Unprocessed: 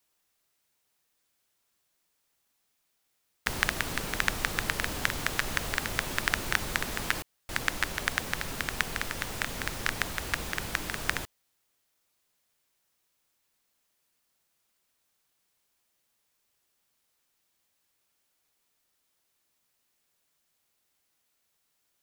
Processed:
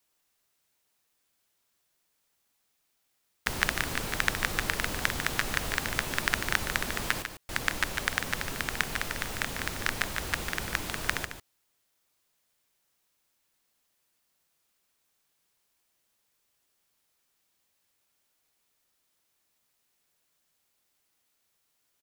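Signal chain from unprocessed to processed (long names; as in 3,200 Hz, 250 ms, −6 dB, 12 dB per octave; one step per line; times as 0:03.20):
single-tap delay 147 ms −8.5 dB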